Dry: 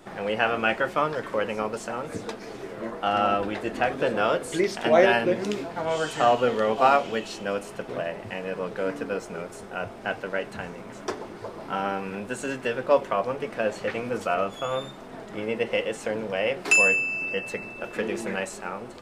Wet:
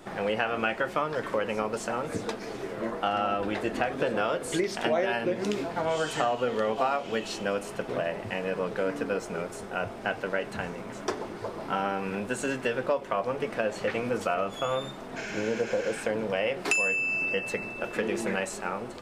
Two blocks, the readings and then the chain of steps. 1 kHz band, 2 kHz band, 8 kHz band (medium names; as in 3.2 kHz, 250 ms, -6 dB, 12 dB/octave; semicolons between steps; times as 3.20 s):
-4.5 dB, -3.5 dB, -2.5 dB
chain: spectral replace 15.19–16.01 s, 1.2–7.6 kHz after; compression 6:1, threshold -25 dBFS, peak gain reduction 11.5 dB; trim +1.5 dB